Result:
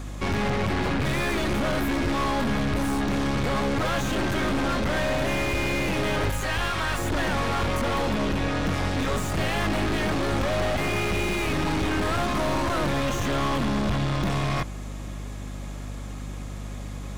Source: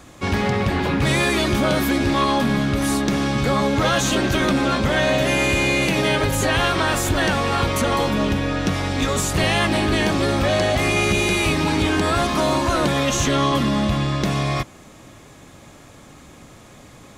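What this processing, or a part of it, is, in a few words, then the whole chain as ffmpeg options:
valve amplifier with mains hum: -filter_complex "[0:a]asettb=1/sr,asplit=3[link_01][link_02][link_03];[link_01]atrim=end=6.304[link_04];[link_02]atrim=start=6.3:end=6.99,asetpts=PTS-STARTPTS,afade=type=in:duration=0.004:curve=qsin,afade=type=out:start_time=0.686:duration=0.004:curve=qsin,equalizer=frequency=280:width_type=o:width=2.5:gain=-13.5[link_05];[link_03]atrim=start=6.986[link_06];[link_04][link_05]acrossfade=duration=0.004:curve1=hsin:curve2=qsin[link_07];[link_07][link_06]acrossfade=duration=0.004:curve1=qsin:curve2=hsin,aeval=exprs='(tanh(22.4*val(0)+0.45)-tanh(0.45))/22.4':channel_layout=same,aeval=exprs='val(0)+0.0141*(sin(2*PI*50*n/s)+sin(2*PI*2*50*n/s)/2+sin(2*PI*3*50*n/s)/3+sin(2*PI*4*50*n/s)/4+sin(2*PI*5*50*n/s)/5)':channel_layout=same,acrossover=split=2600[link_08][link_09];[link_09]acompressor=threshold=-39dB:ratio=4:attack=1:release=60[link_10];[link_08][link_10]amix=inputs=2:normalize=0,volume=3.5dB"

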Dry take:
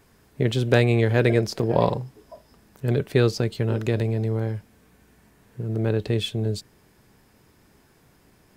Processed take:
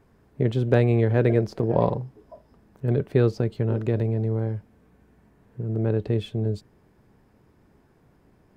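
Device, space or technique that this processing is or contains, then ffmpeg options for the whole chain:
through cloth: -af "highshelf=frequency=2100:gain=-16"

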